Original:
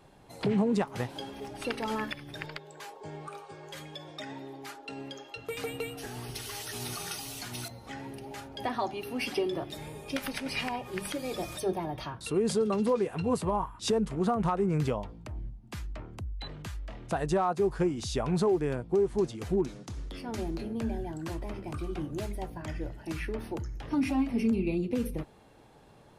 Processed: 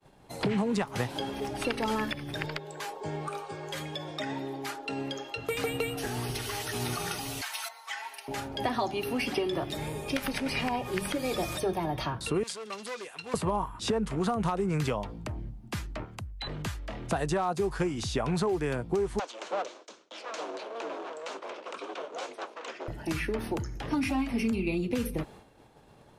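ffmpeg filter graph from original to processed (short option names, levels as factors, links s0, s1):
-filter_complex "[0:a]asettb=1/sr,asplit=3[s0][s1][s2];[s0]atrim=end=7.414[s3];[s1]atrim=start=7.41:end=8.28,asetpts=PTS-STARTPTS,afade=t=in:d=0.004:c=qsin,afade=t=out:st=0.866:d=0.004:c=qsin,highpass=f=900:w=0.5412,highpass=f=900:w=1.3066,aecho=1:1:4.5:0.9,atrim=end_sample=38367[s4];[s2]atrim=start=8.276[s5];[s3][s4]acrossfade=d=0.004:c1=hsin:c2=qsin[s6];[s6][s5]acrossfade=d=0.004:c1=qsin:c2=hsin,asettb=1/sr,asplit=3[s7][s8][s9];[s7]atrim=end=12.434[s10];[s8]atrim=start=12.43:end=13.34,asetpts=PTS-STARTPTS,afade=t=in:d=0.004:c=qsin,afade=t=out:st=0.906:d=0.004:c=qsin,asoftclip=type=hard:threshold=0.0596,bandpass=f=6000:t=q:w=0.6[s11];[s9]atrim=start=13.336[s12];[s10][s11]acrossfade=d=0.004:c1=hsin:c2=qsin[s13];[s13][s12]acrossfade=d=0.004:c1=qsin:c2=hsin,asettb=1/sr,asplit=3[s14][s15][s16];[s14]atrim=end=16.044[s17];[s15]atrim=start=16.04:end=16.47,asetpts=PTS-STARTPTS,afade=t=in:d=0.004:c=qsin,afade=t=out:st=0.426:d=0.004:c=qsin,highpass=f=140:p=1,equalizer=f=350:w=0.82:g=-10,acompressor=mode=upward:threshold=0.00224:ratio=2.5:attack=3.2:release=140:knee=2.83:detection=peak[s18];[s16]atrim=start=16.466[s19];[s17][s18]acrossfade=d=0.004:c1=hsin:c2=qsin[s20];[s20][s19]acrossfade=d=0.004:c1=qsin:c2=hsin,asettb=1/sr,asplit=3[s21][s22][s23];[s21]atrim=end=19.194[s24];[s22]atrim=start=19.19:end=22.88,asetpts=PTS-STARTPTS,afade=t=in:d=0.004:c=qsin,afade=t=out:st=3.686:d=0.004:c=qsin,aeval=exprs='abs(val(0))':c=same,highpass=f=410:w=0.5412,highpass=f=410:w=1.3066,equalizer=f=430:t=q:w=4:g=-4,equalizer=f=760:t=q:w=4:g=-5,equalizer=f=1900:t=q:w=4:g=-6,equalizer=f=4900:t=q:w=4:g=-4,lowpass=f=6800:w=0.5412,lowpass=f=6800:w=1.3066[s25];[s23]atrim=start=22.876[s26];[s24][s25]acrossfade=d=0.004:c1=hsin:c2=qsin[s27];[s27][s26]acrossfade=d=0.004:c1=qsin:c2=hsin,agate=range=0.0224:threshold=0.00316:ratio=3:detection=peak,acrossover=split=110|870|2800[s28][s29][s30][s31];[s28]acompressor=threshold=0.00447:ratio=4[s32];[s29]acompressor=threshold=0.0158:ratio=4[s33];[s30]acompressor=threshold=0.00794:ratio=4[s34];[s31]acompressor=threshold=0.00501:ratio=4[s35];[s32][s33][s34][s35]amix=inputs=4:normalize=0,volume=2.24"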